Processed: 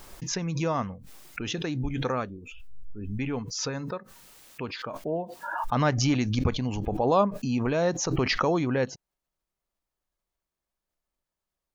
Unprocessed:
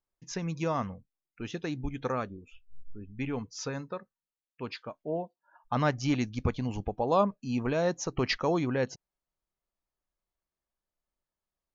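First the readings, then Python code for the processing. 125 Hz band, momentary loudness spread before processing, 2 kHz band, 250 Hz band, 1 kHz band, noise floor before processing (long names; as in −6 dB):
+5.0 dB, 15 LU, +4.0 dB, +3.5 dB, +3.5 dB, below −85 dBFS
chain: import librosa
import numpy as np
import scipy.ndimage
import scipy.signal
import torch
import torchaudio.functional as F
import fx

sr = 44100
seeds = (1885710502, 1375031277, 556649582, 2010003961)

y = fx.pre_swell(x, sr, db_per_s=37.0)
y = F.gain(torch.from_numpy(y), 2.5).numpy()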